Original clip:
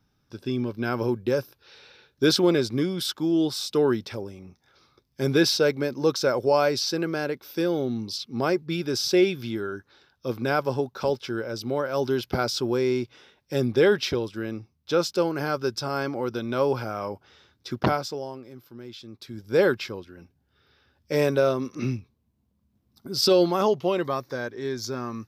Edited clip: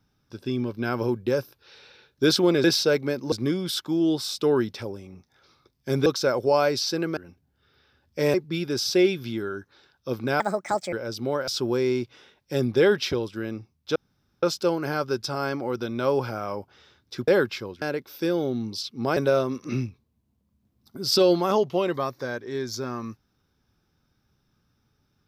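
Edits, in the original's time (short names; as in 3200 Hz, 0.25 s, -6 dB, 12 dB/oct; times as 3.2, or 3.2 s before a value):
5.38–6.06 move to 2.64
7.17–8.52 swap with 20.1–21.27
10.58–11.37 speed 150%
11.92–12.48 cut
14.96 insert room tone 0.47 s
17.81–19.56 cut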